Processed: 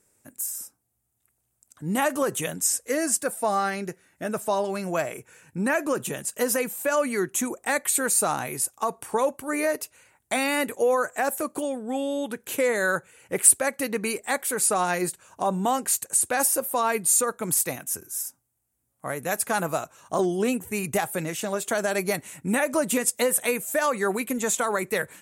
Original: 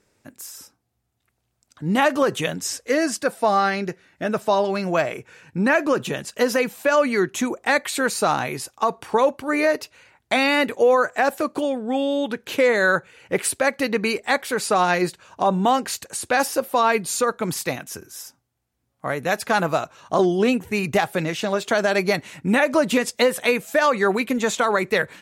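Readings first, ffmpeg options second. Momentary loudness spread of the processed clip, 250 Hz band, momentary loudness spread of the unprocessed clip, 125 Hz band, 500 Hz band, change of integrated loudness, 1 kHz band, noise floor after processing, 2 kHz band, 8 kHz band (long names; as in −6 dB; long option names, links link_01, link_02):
9 LU, −5.5 dB, 9 LU, −5.5 dB, −5.5 dB, −3.5 dB, −5.5 dB, −75 dBFS, −6.5 dB, +7.0 dB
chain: -af "highshelf=frequency=6400:width_type=q:width=1.5:gain=12.5,volume=-5.5dB"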